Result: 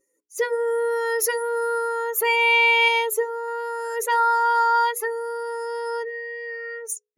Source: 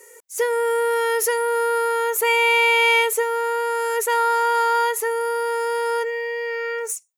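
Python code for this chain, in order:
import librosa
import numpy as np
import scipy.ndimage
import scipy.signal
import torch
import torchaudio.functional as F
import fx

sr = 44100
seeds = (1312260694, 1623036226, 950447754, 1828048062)

y = fx.bin_expand(x, sr, power=2.0)
y = fx.hum_notches(y, sr, base_hz=60, count=8)
y = fx.peak_eq(y, sr, hz=2300.0, db=-6.5, octaves=1.3, at=(2.88, 3.48))
y = fx.notch(y, sr, hz=7900.0, q=5.3)
y = y * 10.0 ** (2.5 / 20.0)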